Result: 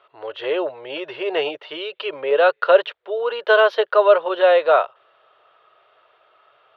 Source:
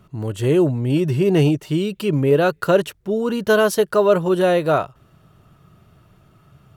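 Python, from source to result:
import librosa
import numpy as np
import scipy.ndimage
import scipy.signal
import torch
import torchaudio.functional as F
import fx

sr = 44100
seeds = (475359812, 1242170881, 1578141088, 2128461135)

y = scipy.signal.sosfilt(scipy.signal.ellip(3, 1.0, 40, [500.0, 3600.0], 'bandpass', fs=sr, output='sos'), x)
y = y * 10.0 ** (4.0 / 20.0)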